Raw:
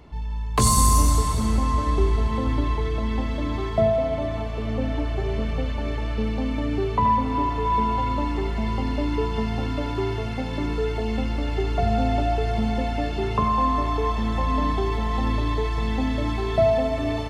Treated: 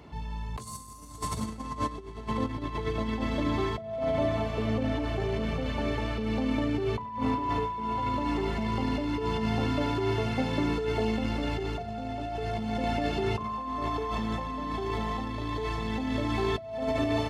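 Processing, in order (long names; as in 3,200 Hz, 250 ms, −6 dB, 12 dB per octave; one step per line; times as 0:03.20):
compressor whose output falls as the input rises −25 dBFS, ratio −0.5
high-pass filter 88 Hz 12 dB per octave
level −2 dB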